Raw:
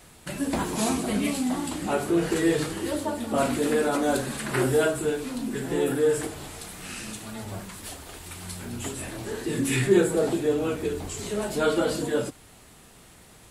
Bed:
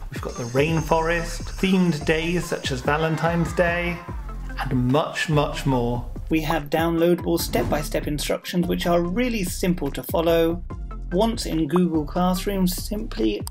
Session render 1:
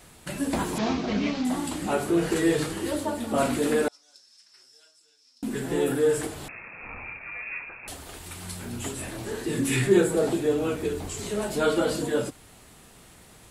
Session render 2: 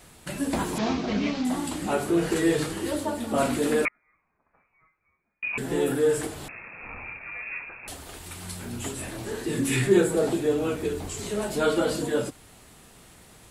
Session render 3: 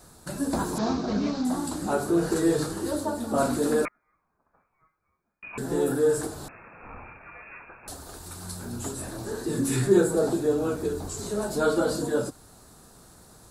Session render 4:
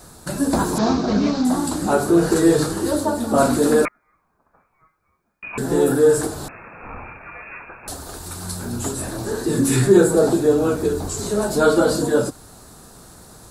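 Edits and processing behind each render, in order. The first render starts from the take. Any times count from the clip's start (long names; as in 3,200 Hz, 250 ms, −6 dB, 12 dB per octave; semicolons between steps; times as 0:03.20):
0:00.78–0:01.45: variable-slope delta modulation 32 kbit/s; 0:03.88–0:05.43: resonant band-pass 5,300 Hz, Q 18; 0:06.48–0:07.88: voice inversion scrambler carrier 2,600 Hz
0:03.85–0:05.58: voice inversion scrambler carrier 2,700 Hz
flat-topped bell 2,500 Hz −12 dB 1 octave
level +8 dB; brickwall limiter −3 dBFS, peak gain reduction 2.5 dB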